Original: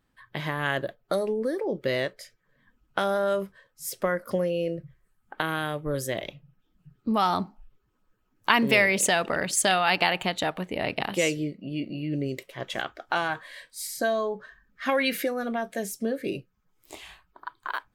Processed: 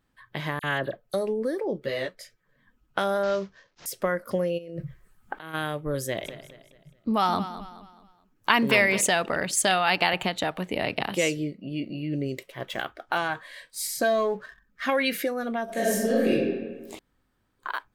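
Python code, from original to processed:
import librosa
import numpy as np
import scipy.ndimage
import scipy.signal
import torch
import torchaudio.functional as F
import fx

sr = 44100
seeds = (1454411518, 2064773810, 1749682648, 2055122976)

y = fx.dispersion(x, sr, late='lows', ms=46.0, hz=3000.0, at=(0.59, 1.14))
y = fx.ensemble(y, sr, at=(1.77, 2.18), fade=0.02)
y = fx.cvsd(y, sr, bps=32000, at=(3.23, 3.86))
y = fx.over_compress(y, sr, threshold_db=-39.0, ratio=-1.0, at=(4.57, 5.53), fade=0.02)
y = fx.echo_feedback(y, sr, ms=213, feedback_pct=38, wet_db=-13, at=(6.24, 9.0), fade=0.02)
y = fx.band_squash(y, sr, depth_pct=70, at=(10.13, 11.15))
y = fx.resample_linear(y, sr, factor=3, at=(12.52, 13.18))
y = fx.leveller(y, sr, passes=1, at=(13.71, 14.86))
y = fx.reverb_throw(y, sr, start_s=15.64, length_s=0.66, rt60_s=1.4, drr_db=-8.0)
y = fx.edit(y, sr, fx.room_tone_fill(start_s=16.99, length_s=0.6), tone=tone)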